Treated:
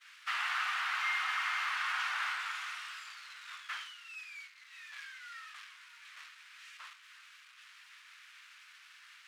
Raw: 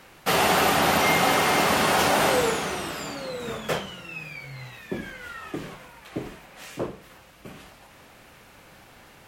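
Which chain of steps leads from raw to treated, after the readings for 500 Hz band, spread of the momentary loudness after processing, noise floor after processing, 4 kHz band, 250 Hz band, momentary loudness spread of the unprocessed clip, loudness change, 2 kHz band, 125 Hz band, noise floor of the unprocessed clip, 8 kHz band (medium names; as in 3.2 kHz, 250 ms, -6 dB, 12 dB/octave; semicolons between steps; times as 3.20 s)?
under -40 dB, 22 LU, -59 dBFS, -12.5 dB, under -40 dB, 18 LU, -13.0 dB, -8.5 dB, under -40 dB, -52 dBFS, -20.5 dB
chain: zero-crossing glitches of -15 dBFS; low-pass 2.3 kHz 12 dB/octave; expander -29 dBFS; steep high-pass 1.2 kHz 36 dB/octave; companded quantiser 8-bit; trim -7 dB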